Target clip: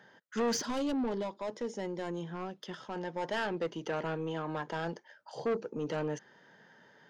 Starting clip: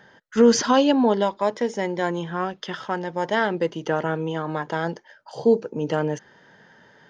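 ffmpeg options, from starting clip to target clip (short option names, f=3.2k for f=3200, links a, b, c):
-filter_complex "[0:a]highpass=130,asoftclip=type=tanh:threshold=-20dB,asettb=1/sr,asplit=3[a][b][c];[a]atrim=end=0.574[d];[b]atrim=start=0.57:end=2.96,asetpts=PTS-STARTPTS,afade=t=in:d=0.004:c=qsin,afade=t=out:st=2.386:d=0.004:c=qsin,equalizer=f=1.7k:w=0.44:g=-7[e];[c]atrim=start=2.956[f];[d][e]acrossfade=d=0.004:c1=hsin:c2=qsin[g];[g][f]acrossfade=d=0.004:c1=qsin:c2=hsin,volume=-7dB"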